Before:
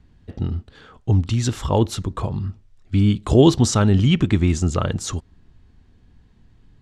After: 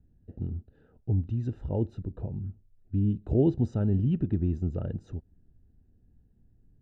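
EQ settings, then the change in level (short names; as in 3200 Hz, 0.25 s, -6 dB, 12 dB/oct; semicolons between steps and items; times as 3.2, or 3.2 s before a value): running mean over 40 samples; air absorption 50 m; -9.0 dB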